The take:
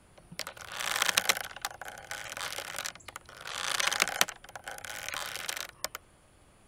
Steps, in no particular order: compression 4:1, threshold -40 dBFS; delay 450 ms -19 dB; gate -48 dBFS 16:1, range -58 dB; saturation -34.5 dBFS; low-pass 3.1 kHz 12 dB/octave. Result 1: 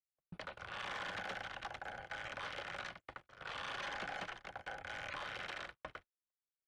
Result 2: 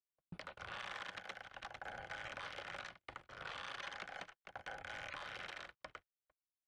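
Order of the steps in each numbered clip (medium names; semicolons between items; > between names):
delay > saturation > low-pass > compression > gate; delay > compression > gate > saturation > low-pass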